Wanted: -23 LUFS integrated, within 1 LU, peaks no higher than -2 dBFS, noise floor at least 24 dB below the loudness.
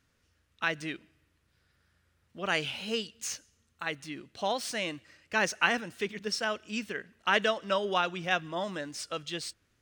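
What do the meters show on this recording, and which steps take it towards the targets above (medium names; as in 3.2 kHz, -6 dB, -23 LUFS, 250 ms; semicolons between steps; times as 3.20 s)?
loudness -32.0 LUFS; peak level -10.0 dBFS; loudness target -23.0 LUFS
-> trim +9 dB; peak limiter -2 dBFS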